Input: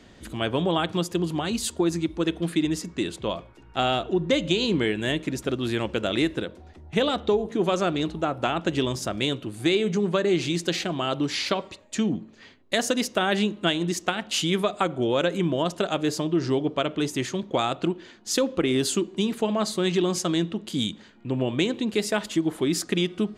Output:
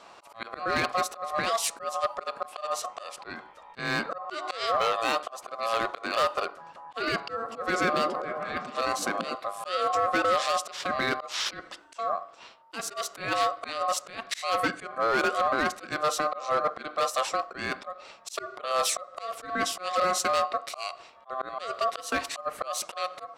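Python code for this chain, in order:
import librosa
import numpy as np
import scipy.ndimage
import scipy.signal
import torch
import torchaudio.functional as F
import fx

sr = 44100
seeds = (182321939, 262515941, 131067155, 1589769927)

y = fx.auto_swell(x, sr, attack_ms=249.0)
y = np.clip(y, -10.0 ** (-21.0 / 20.0), 10.0 ** (-21.0 / 20.0))
y = y * np.sin(2.0 * np.pi * 910.0 * np.arange(len(y)) / sr)
y = fx.low_shelf(y, sr, hz=110.0, db=-12.0)
y = fx.echo_stepped(y, sr, ms=120, hz=200.0, octaves=0.7, feedback_pct=70, wet_db=-1, at=(7.17, 9.35))
y = y * 10.0 ** (3.5 / 20.0)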